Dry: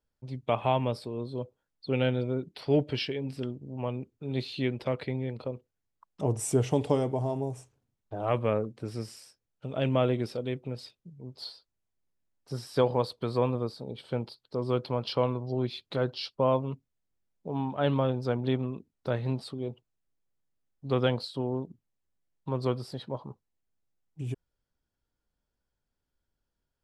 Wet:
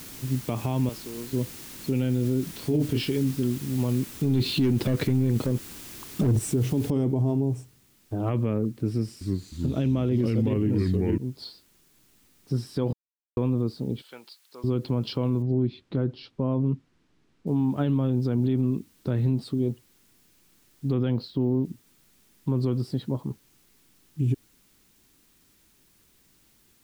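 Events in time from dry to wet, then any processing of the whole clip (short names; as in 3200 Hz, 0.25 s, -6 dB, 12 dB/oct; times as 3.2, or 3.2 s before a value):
0.89–1.33 HPF 1000 Hz 6 dB/oct
2.46–3.11 doubler 26 ms -5 dB
4.13–6.39 sample leveller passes 3
6.9 noise floor step -43 dB -63 dB
8.9–11.18 echoes that change speed 0.309 s, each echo -3 st, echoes 3
12.93–13.37 mute
14.02–14.64 HPF 1200 Hz
15.42–17.47 tape spacing loss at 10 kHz 24 dB
20.93–21.65 bell 8700 Hz -12 dB 1.1 oct
whole clip: resonant low shelf 420 Hz +10 dB, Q 1.5; limiter -16 dBFS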